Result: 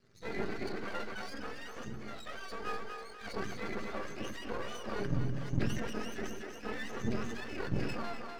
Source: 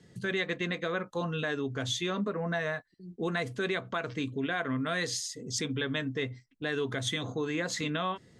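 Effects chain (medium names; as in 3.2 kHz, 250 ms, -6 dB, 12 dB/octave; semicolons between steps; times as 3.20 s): spectrum inverted on a logarithmic axis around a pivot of 880 Hz; treble shelf 2.3 kHz -10.5 dB; 1.28–2.65 s: compression, threshold -35 dBFS, peak gain reduction 12.5 dB; cabinet simulation 110–7000 Hz, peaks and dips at 920 Hz -7 dB, 1.3 kHz +8 dB, 3.1 kHz -4 dB; half-wave rectifier; feedback comb 400 Hz, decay 0.36 s, harmonics odd; two-band feedback delay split 310 Hz, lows 94 ms, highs 247 ms, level -9 dB; decay stretcher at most 34 dB/s; trim +6 dB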